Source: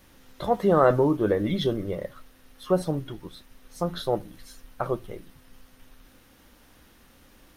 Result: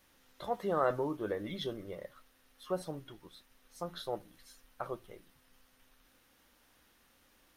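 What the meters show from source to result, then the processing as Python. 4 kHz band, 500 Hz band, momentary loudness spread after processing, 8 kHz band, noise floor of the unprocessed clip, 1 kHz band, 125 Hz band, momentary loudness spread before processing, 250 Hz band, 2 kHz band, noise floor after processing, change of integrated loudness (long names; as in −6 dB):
−8.5 dB, −12.0 dB, 24 LU, −8.5 dB, −57 dBFS, −10.0 dB, −16.5 dB, 21 LU, −14.5 dB, −9.0 dB, −68 dBFS, −12.0 dB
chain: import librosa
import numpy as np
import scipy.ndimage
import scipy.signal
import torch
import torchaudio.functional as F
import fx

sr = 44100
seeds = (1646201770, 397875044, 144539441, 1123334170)

y = fx.low_shelf(x, sr, hz=400.0, db=-9.0)
y = y * 10.0 ** (-8.5 / 20.0)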